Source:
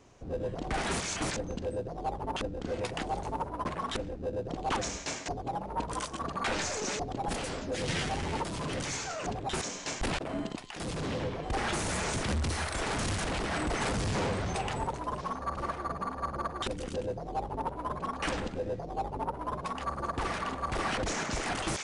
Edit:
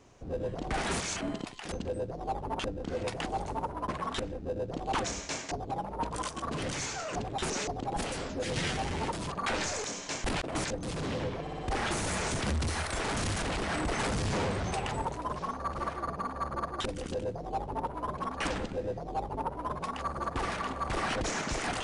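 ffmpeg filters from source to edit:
-filter_complex "[0:a]asplit=12[a][b][c][d][e][f][g][h][i][j][k][l];[a]atrim=end=1.212[m];[b]atrim=start=10.318:end=10.832[n];[c]atrim=start=1.488:end=6.292[o];[d]atrim=start=8.628:end=9.612[p];[e]atrim=start=6.818:end=8.632[q];[f]atrim=start=6.288:end=6.822[r];[g]atrim=start=9.608:end=10.322[s];[h]atrim=start=1.208:end=1.492[t];[i]atrim=start=10.828:end=11.472[u];[j]atrim=start=11.408:end=11.472[v];[k]atrim=start=11.408:end=11.472[w];[l]atrim=start=11.408[x];[m][n]acrossfade=d=0.004:c1=hsin:c2=hsin[y];[y][o]acrossfade=d=0.004:c1=hsin:c2=hsin[z];[z][p]acrossfade=d=0.004:c1=hsin:c2=hsin[aa];[aa][q]acrossfade=d=0.004:c1=hsin:c2=hsin[ab];[ab][r]acrossfade=d=0.004:c1=hsin:c2=hsin[ac];[ac][s]acrossfade=d=0.004:c1=hsin:c2=hsin[ad];[ad][t]acrossfade=d=0.004:c1=hsin:c2=hsin[ae];[ae][u]acrossfade=d=0.004:c1=hsin:c2=hsin[af];[af][v]acrossfade=d=0.004:c1=hsin:c2=hsin[ag];[ag][w]acrossfade=d=0.004:c1=hsin:c2=hsin[ah];[ah][x]acrossfade=d=0.004:c1=hsin:c2=hsin"

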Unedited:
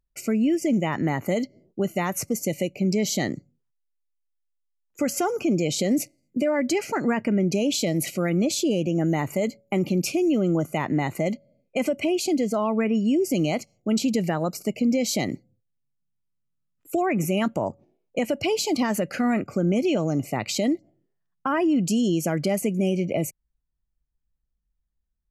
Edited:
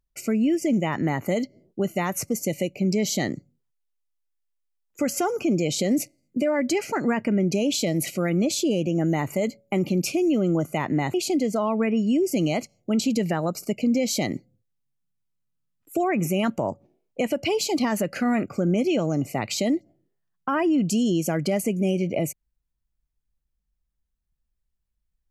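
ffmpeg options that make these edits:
-filter_complex "[0:a]asplit=2[a][b];[a]atrim=end=11.142[c];[b]atrim=start=12.118[d];[c][d]acrossfade=d=0.004:c1=hsin:c2=hsin"

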